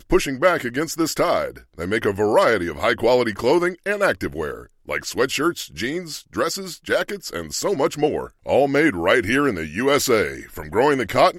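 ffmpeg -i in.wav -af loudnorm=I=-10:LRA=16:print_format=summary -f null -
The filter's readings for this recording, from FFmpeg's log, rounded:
Input Integrated:    -20.3 LUFS
Input True Peak:      -3.3 dBTP
Input LRA:             4.9 LU
Input Threshold:     -30.5 LUFS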